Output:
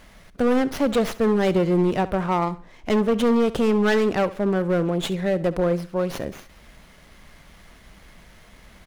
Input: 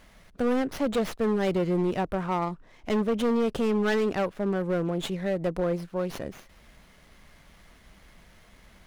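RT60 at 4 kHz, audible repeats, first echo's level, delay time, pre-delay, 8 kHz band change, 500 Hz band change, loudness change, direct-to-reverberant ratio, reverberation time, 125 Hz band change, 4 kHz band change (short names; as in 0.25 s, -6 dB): none, 2, -17.0 dB, 68 ms, none, +5.5 dB, +5.5 dB, +5.5 dB, none, none, +5.5 dB, +5.5 dB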